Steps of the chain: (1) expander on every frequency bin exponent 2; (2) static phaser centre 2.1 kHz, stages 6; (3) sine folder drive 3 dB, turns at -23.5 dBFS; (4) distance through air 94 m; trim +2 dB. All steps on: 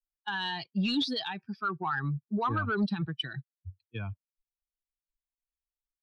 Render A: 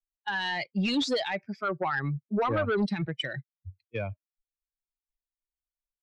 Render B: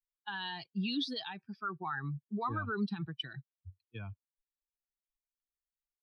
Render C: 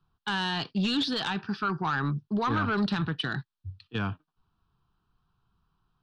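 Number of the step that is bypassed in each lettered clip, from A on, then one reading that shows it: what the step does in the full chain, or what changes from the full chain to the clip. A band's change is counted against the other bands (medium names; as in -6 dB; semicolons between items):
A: 2, 500 Hz band +8.5 dB; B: 3, distortion -21 dB; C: 1, crest factor change -3.0 dB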